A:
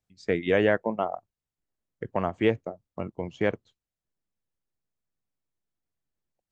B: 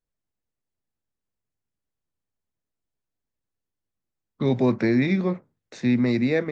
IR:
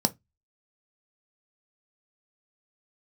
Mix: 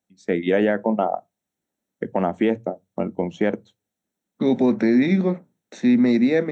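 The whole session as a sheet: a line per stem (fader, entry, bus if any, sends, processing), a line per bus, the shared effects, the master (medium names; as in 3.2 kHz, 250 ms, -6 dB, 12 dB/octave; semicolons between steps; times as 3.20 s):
-1.0 dB, 0.00 s, send -15 dB, level rider gain up to 6.5 dB
-0.5 dB, 0.00 s, send -17 dB, none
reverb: on, RT60 0.15 s, pre-delay 3 ms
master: high-pass 95 Hz; peak limiter -9.5 dBFS, peak gain reduction 7.5 dB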